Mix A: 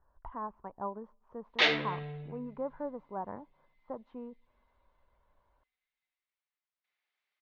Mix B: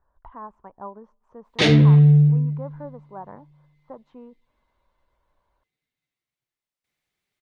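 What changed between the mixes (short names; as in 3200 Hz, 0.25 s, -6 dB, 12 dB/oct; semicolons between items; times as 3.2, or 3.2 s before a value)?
background: remove HPF 850 Hz 12 dB/oct; master: remove air absorption 200 m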